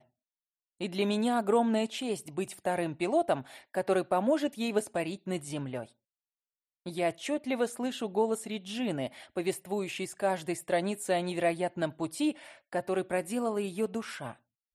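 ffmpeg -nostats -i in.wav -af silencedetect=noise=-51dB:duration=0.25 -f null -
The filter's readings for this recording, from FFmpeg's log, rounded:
silence_start: 0.00
silence_end: 0.80 | silence_duration: 0.80
silence_start: 5.91
silence_end: 6.86 | silence_duration: 0.95
silence_start: 14.35
silence_end: 14.75 | silence_duration: 0.40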